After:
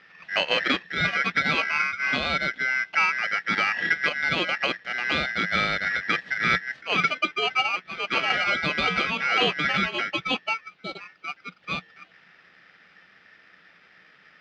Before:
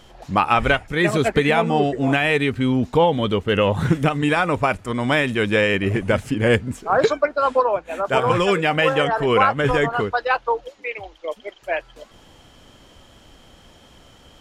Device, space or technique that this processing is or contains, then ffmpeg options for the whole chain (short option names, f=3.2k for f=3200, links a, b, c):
ring modulator pedal into a guitar cabinet: -filter_complex "[0:a]asettb=1/sr,asplit=3[a][b][c];[a]atrim=end=1.534[d];[b]atrim=start=1.53:end=2.96,asetpts=PTS-STARTPTS,afade=t=in:d=0.004:c=qsin,afade=t=out:st=1.426:d=0.004:c=qsin,highpass=f=150:w=0.5412,highpass=f=150:w=1.3066[e];[c]atrim=start=2.956[f];[d][e]acrossfade=d=0.004:c1=hsin:c2=qsin[g];[g][f]acrossfade=d=0.004:c1=qsin:c2=hsin,aeval=exprs='val(0)*sgn(sin(2*PI*1800*n/s))':c=same,highpass=86,equalizer=f=100:t=q:w=4:g=-9,equalizer=f=180:t=q:w=4:g=10,equalizer=f=1k:t=q:w=4:g=-9,lowpass=f=3.7k:w=0.5412,lowpass=f=3.7k:w=1.3066,volume=-4.5dB"